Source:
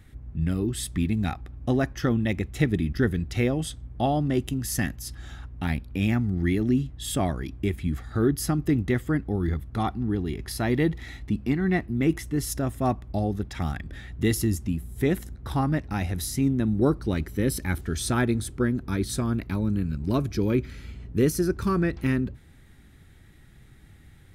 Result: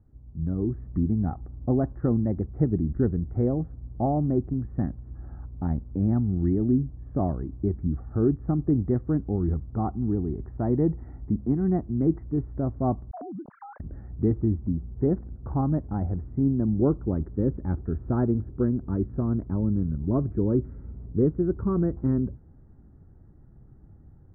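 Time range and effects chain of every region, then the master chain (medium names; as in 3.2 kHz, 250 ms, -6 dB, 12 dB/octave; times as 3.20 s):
13.11–13.80 s: formants replaced by sine waves + compression 10:1, threshold -34 dBFS
whole clip: Bessel low-pass 710 Hz, order 8; level rider gain up to 8.5 dB; trim -7.5 dB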